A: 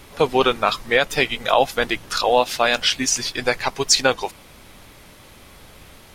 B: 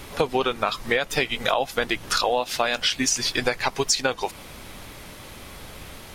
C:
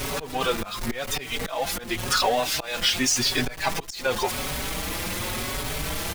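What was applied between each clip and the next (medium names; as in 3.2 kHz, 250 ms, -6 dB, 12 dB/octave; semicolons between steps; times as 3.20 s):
compression 6:1, threshold -24 dBFS, peak gain reduction 13 dB; trim +4.5 dB
jump at every zero crossing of -23 dBFS; slow attack 232 ms; endless flanger 4.9 ms +0.9 Hz; trim +1 dB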